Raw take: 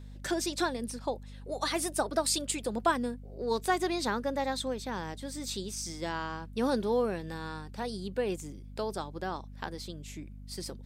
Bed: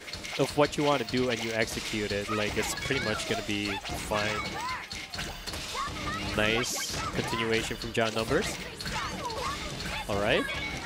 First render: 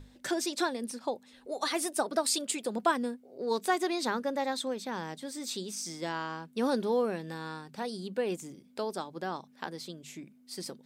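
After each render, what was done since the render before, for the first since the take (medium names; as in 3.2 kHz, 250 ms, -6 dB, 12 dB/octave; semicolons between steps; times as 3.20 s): hum notches 50/100/150/200 Hz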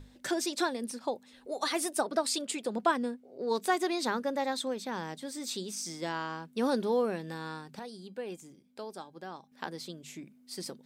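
2.01–3.55 s: treble shelf 8 kHz -8 dB; 7.79–9.52 s: feedback comb 800 Hz, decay 0.18 s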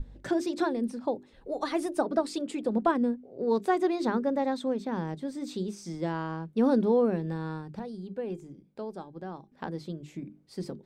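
tilt EQ -4 dB/octave; hum notches 50/100/150/200/250/300/350/400 Hz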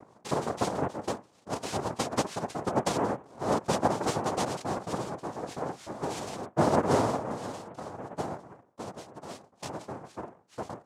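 rotary cabinet horn 6.3 Hz; noise-vocoded speech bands 2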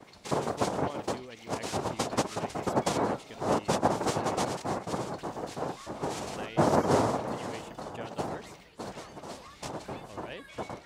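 add bed -17 dB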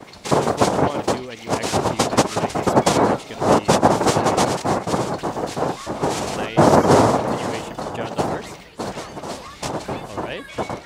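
trim +12 dB; peak limiter -1 dBFS, peak gain reduction 2.5 dB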